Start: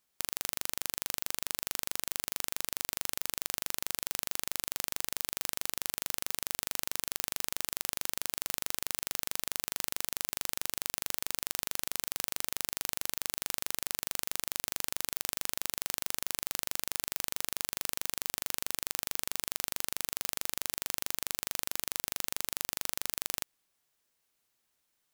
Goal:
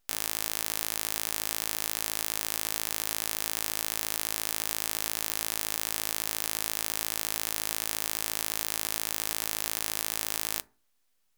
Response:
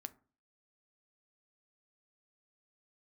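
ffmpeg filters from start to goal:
-filter_complex "[0:a]aeval=exprs='abs(val(0))':c=same,asetrate=97461,aresample=44100,asplit=2[a][b];[1:a]atrim=start_sample=2205[c];[b][c]afir=irnorm=-1:irlink=0,volume=8dB[d];[a][d]amix=inputs=2:normalize=0"

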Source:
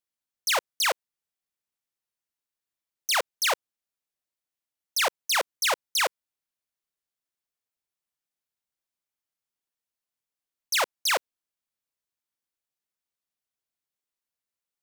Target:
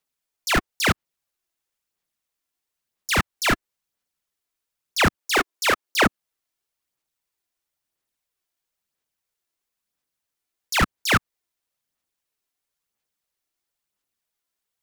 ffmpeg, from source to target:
-filter_complex "[0:a]aeval=exprs='val(0)*sin(2*PI*740*n/s)':c=same,acrossover=split=130|2300[a][b][c];[c]alimiter=level_in=1.5dB:limit=-24dB:level=0:latency=1:release=179,volume=-1.5dB[d];[a][b][d]amix=inputs=3:normalize=0,aphaser=in_gain=1:out_gain=1:delay=3:decay=0.35:speed=1:type=sinusoidal,asettb=1/sr,asplit=3[e][f][g];[e]atrim=end=5.164[h];[f]atrim=start=5.16:end=6.06,asetpts=PTS-STARTPTS,afade=t=in:d=0.004:c=qsin,afade=t=out:st=0.896:d=0.004:c=qsin,lowshelf=f=230:t=q:w=1.5:g=-11.5[i];[g]atrim=start=6.056[j];[h][i]acrossfade=d=0.004:c1=hsin:c2=qsin[k];[k][j]acrossfade=d=0.004:c1=qsin:c2=hsin,volume=9dB"

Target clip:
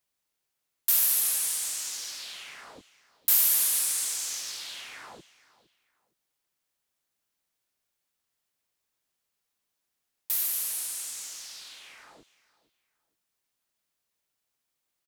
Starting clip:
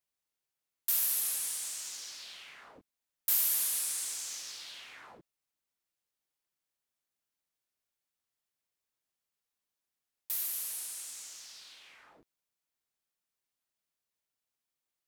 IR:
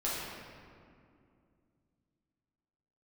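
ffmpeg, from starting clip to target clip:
-af "aecho=1:1:462|924:0.112|0.0281,volume=6.5dB"

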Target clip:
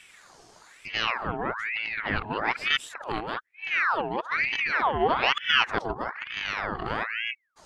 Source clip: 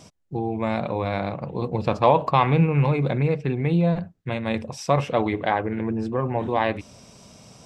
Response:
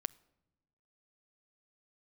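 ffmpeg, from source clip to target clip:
-af "areverse,aeval=exprs='val(0)*sin(2*PI*1500*n/s+1500*0.65/1.1*sin(2*PI*1.1*n/s))':c=same,volume=-2.5dB"

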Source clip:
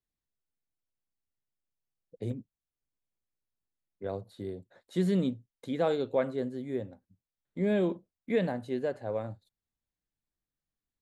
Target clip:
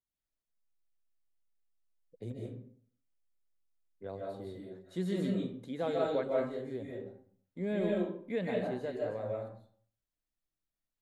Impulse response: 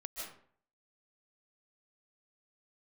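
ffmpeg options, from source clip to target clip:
-filter_complex "[1:a]atrim=start_sample=2205[a];[0:a][a]afir=irnorm=-1:irlink=0,volume=-1.5dB"

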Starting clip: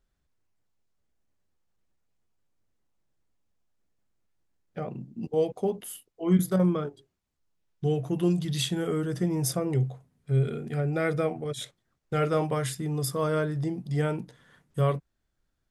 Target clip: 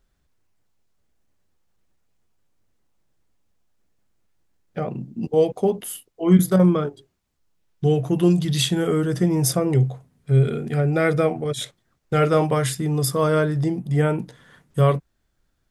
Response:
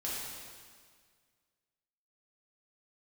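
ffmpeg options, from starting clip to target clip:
-filter_complex "[0:a]asettb=1/sr,asplit=3[a][b][c];[a]atrim=end=13.794[d];[b]atrim=start=13.79:end=14.2,asetpts=PTS-STARTPTS,afade=t=in:d=0.004:c=qsin,afade=t=out:st=0.406:d=0.004:c=qsin,equalizer=f=4.7k:w=1.7:g=-10.5[e];[c]atrim=start=14.196[f];[d][e]acrossfade=d=0.004:c1=hsin:c2=qsin[g];[g][f]acrossfade=d=0.004:c1=qsin:c2=hsin,volume=7.5dB"

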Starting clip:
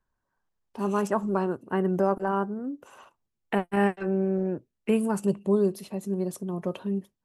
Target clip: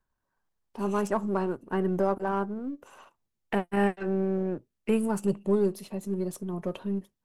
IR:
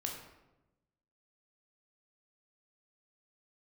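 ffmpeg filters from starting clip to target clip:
-af "aeval=exprs='if(lt(val(0),0),0.708*val(0),val(0))':c=same"

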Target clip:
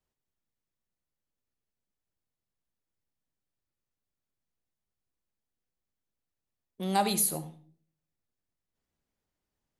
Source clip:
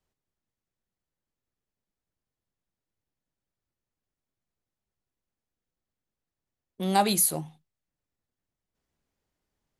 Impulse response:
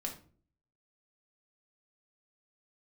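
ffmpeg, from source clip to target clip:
-filter_complex "[0:a]asplit=2[a][b];[1:a]atrim=start_sample=2205,adelay=73[c];[b][c]afir=irnorm=-1:irlink=0,volume=-13dB[d];[a][d]amix=inputs=2:normalize=0,volume=-4dB"

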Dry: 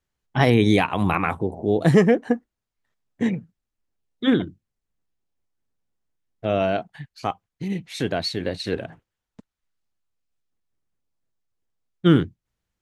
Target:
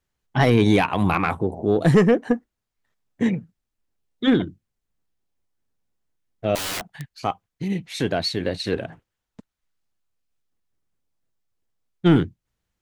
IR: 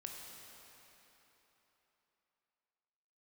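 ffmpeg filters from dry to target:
-filter_complex "[0:a]asettb=1/sr,asplit=3[a][b][c];[a]atrim=end=6.554[d];[b]atrim=start=6.55:end=7.12,asetpts=PTS-STARTPTS,afade=t=in:d=0.004:c=qsin,afade=t=out:st=0.566:d=0.004:c=qsin,aeval=exprs='(mod(18.8*val(0)+1,2)-1)/18.8':c=same[e];[c]atrim=start=7.116[f];[d][e]acrossfade=d=0.004:c1=hsin:c2=qsin[g];[g][f]acrossfade=d=0.004:c1=qsin:c2=hsin,acontrast=79,volume=-5dB"

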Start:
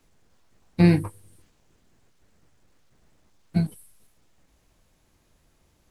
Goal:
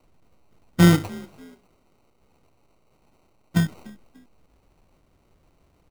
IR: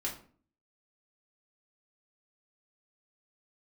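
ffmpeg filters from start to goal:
-filter_complex "[0:a]asettb=1/sr,asplit=3[a][b][c];[a]atrim=end=0.954[d];[b]atrim=start=0.95:end=3.57,asetpts=PTS-STARTPTS,afade=t=in:d=0.004:c=qsin,afade=t=out:st=2.616:d=0.004:c=qsin,bass=f=250:g=-6,treble=f=4k:g=5[e];[c]atrim=start=3.566[f];[d][e]acrossfade=d=0.004:c1=hsin:c2=qsin[g];[g][f]acrossfade=d=0.004:c1=qsin:c2=hsin,acrusher=samples=26:mix=1:aa=0.000001,asplit=3[h][i][j];[i]adelay=293,afreqshift=43,volume=-23dB[k];[j]adelay=586,afreqshift=86,volume=-32.4dB[l];[h][k][l]amix=inputs=3:normalize=0,volume=2.5dB"

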